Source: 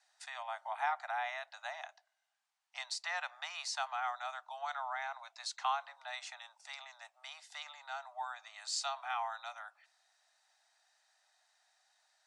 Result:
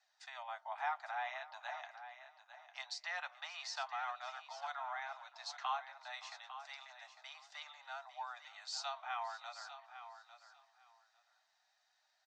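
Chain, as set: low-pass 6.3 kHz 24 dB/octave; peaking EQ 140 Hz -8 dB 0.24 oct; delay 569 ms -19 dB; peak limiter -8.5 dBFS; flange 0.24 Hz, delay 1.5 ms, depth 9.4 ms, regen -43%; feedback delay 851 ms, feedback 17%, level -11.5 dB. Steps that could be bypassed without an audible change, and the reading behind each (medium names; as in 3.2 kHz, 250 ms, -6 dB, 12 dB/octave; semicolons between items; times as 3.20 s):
peaking EQ 140 Hz: input has nothing below 540 Hz; peak limiter -8.5 dBFS: peak at its input -22.5 dBFS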